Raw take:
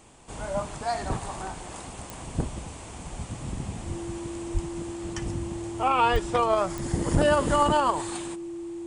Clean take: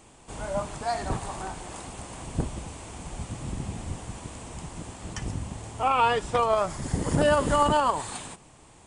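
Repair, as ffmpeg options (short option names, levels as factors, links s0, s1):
-filter_complex "[0:a]adeclick=t=4,bandreject=f=340:w=30,asplit=3[s0][s1][s2];[s0]afade=t=out:st=4.53:d=0.02[s3];[s1]highpass=f=140:w=0.5412,highpass=f=140:w=1.3066,afade=t=in:st=4.53:d=0.02,afade=t=out:st=4.65:d=0.02[s4];[s2]afade=t=in:st=4.65:d=0.02[s5];[s3][s4][s5]amix=inputs=3:normalize=0,asplit=3[s6][s7][s8];[s6]afade=t=out:st=6.12:d=0.02[s9];[s7]highpass=f=140:w=0.5412,highpass=f=140:w=1.3066,afade=t=in:st=6.12:d=0.02,afade=t=out:st=6.24:d=0.02[s10];[s8]afade=t=in:st=6.24:d=0.02[s11];[s9][s10][s11]amix=inputs=3:normalize=0,asplit=3[s12][s13][s14];[s12]afade=t=out:st=7.13:d=0.02[s15];[s13]highpass=f=140:w=0.5412,highpass=f=140:w=1.3066,afade=t=in:st=7.13:d=0.02,afade=t=out:st=7.25:d=0.02[s16];[s14]afade=t=in:st=7.25:d=0.02[s17];[s15][s16][s17]amix=inputs=3:normalize=0"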